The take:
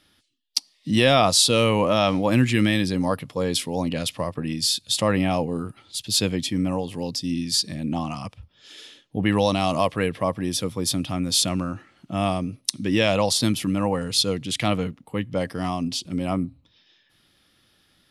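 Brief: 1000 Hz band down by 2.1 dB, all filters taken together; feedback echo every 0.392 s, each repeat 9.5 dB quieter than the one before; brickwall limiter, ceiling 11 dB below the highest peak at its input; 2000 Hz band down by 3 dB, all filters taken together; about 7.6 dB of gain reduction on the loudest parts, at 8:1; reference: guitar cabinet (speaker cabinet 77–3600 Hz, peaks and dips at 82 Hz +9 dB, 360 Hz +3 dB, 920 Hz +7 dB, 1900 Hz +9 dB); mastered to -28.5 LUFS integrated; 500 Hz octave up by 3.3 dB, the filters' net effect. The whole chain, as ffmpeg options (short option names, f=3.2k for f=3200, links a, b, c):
-af "equalizer=f=500:t=o:g=5.5,equalizer=f=1k:t=o:g=-8.5,equalizer=f=2k:t=o:g=-7,acompressor=threshold=-21dB:ratio=8,alimiter=limit=-18dB:level=0:latency=1,highpass=77,equalizer=f=82:t=q:w=4:g=9,equalizer=f=360:t=q:w=4:g=3,equalizer=f=920:t=q:w=4:g=7,equalizer=f=1.9k:t=q:w=4:g=9,lowpass=f=3.6k:w=0.5412,lowpass=f=3.6k:w=1.3066,aecho=1:1:392|784|1176|1568:0.335|0.111|0.0365|0.012"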